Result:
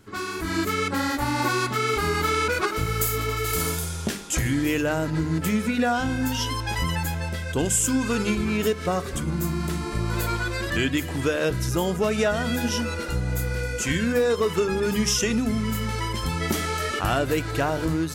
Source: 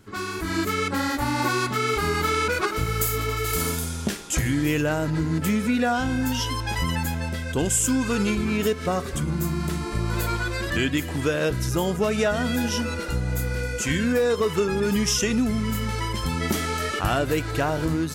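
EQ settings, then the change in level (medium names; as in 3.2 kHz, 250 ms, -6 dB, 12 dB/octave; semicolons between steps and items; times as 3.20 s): hum notches 50/100/150/200/250 Hz; 0.0 dB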